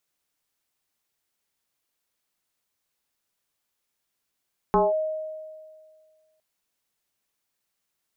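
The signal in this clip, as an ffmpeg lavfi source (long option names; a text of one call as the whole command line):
ffmpeg -f lavfi -i "aevalsrc='0.178*pow(10,-3*t/1.9)*sin(2*PI*626*t+2.3*clip(1-t/0.19,0,1)*sin(2*PI*0.35*626*t))':duration=1.66:sample_rate=44100" out.wav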